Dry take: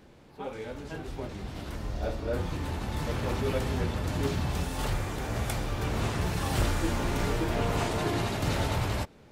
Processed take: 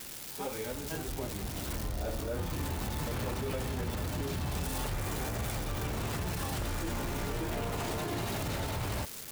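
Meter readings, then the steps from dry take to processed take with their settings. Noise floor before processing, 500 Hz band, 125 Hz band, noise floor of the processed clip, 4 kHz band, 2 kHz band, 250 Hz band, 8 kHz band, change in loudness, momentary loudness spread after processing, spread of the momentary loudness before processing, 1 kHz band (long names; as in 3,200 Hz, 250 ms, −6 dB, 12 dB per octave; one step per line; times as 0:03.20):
−54 dBFS, −5.0 dB, −5.0 dB, −43 dBFS, −3.0 dB, −4.5 dB, −5.0 dB, +1.0 dB, −4.0 dB, 3 LU, 10 LU, −4.5 dB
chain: spike at every zero crossing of −30 dBFS
brickwall limiter −26.5 dBFS, peak gain reduction 11 dB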